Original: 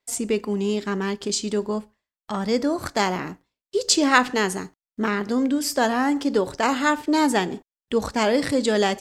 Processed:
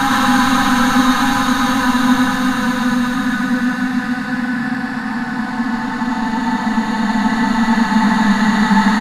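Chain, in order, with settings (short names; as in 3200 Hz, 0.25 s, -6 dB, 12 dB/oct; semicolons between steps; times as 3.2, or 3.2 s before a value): random spectral dropouts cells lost 36%; band shelf 1100 Hz +15 dB; soft clip -12 dBFS, distortion -5 dB; Paulstretch 37×, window 0.25 s, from 4.15; resonant low shelf 280 Hz +11.5 dB, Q 3; on a send: echo 0.11 s -3.5 dB; on the sum: downsampling 32000 Hz; gain -1 dB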